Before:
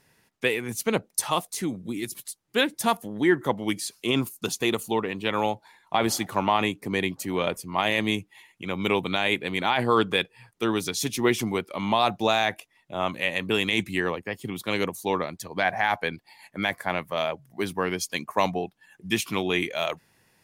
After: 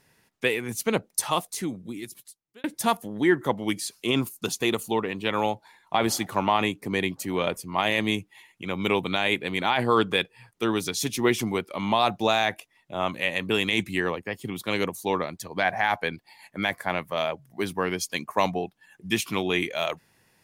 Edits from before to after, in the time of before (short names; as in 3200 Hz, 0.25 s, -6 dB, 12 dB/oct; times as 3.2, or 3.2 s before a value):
1.48–2.64 fade out